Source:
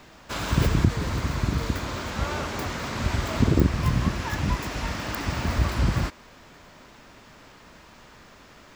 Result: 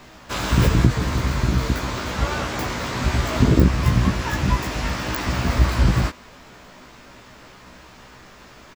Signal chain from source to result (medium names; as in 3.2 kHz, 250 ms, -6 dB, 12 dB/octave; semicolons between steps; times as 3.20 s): doubling 16 ms -3 dB; trim +3 dB